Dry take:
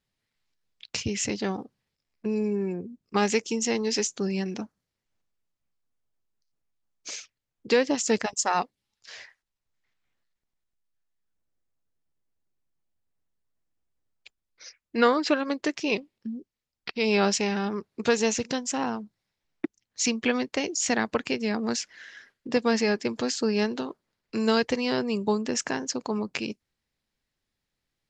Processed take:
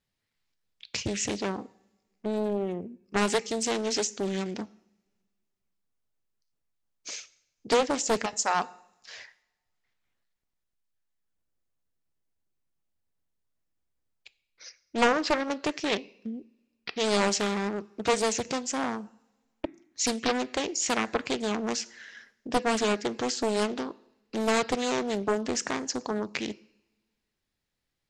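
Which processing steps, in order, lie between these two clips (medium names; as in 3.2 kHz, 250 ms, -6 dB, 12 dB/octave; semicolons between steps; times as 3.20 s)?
two-slope reverb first 0.66 s, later 2 s, from -23 dB, DRR 16 dB; loudspeaker Doppler distortion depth 0.72 ms; trim -1 dB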